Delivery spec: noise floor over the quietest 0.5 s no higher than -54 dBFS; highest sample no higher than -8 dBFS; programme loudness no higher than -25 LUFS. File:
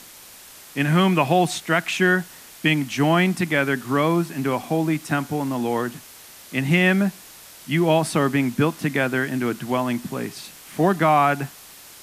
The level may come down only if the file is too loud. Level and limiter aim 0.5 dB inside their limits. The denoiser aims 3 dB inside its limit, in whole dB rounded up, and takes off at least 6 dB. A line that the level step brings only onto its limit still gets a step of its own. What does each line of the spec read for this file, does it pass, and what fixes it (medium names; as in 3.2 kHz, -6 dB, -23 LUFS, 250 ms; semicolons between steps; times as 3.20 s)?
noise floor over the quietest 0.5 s -44 dBFS: fail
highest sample -5.5 dBFS: fail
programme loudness -21.5 LUFS: fail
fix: noise reduction 9 dB, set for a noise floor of -44 dBFS; trim -4 dB